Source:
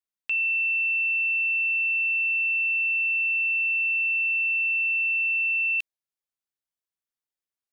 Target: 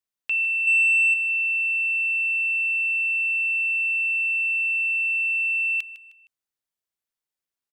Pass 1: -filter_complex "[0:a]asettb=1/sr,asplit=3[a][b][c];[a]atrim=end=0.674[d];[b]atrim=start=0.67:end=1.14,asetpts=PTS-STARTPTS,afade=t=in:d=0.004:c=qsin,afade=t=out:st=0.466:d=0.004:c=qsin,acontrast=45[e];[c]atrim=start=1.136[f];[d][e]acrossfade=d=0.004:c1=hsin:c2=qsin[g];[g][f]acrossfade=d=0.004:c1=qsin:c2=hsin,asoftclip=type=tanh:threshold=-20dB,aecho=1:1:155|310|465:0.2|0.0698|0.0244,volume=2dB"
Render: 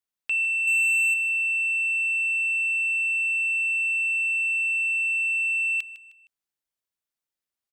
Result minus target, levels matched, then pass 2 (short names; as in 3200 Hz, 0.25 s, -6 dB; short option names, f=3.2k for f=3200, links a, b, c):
soft clip: distortion +12 dB
-filter_complex "[0:a]asettb=1/sr,asplit=3[a][b][c];[a]atrim=end=0.674[d];[b]atrim=start=0.67:end=1.14,asetpts=PTS-STARTPTS,afade=t=in:d=0.004:c=qsin,afade=t=out:st=0.466:d=0.004:c=qsin,acontrast=45[e];[c]atrim=start=1.136[f];[d][e]acrossfade=d=0.004:c1=hsin:c2=qsin[g];[g][f]acrossfade=d=0.004:c1=qsin:c2=hsin,asoftclip=type=tanh:threshold=-12dB,aecho=1:1:155|310|465:0.2|0.0698|0.0244,volume=2dB"